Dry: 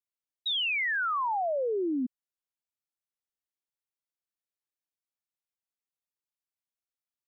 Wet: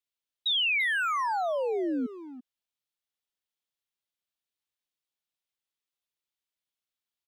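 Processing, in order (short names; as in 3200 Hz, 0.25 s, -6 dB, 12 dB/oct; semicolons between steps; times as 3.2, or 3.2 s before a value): bell 3400 Hz +7.5 dB 0.92 oct; limiter -23 dBFS, peak gain reduction 4.5 dB; speakerphone echo 0.34 s, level -9 dB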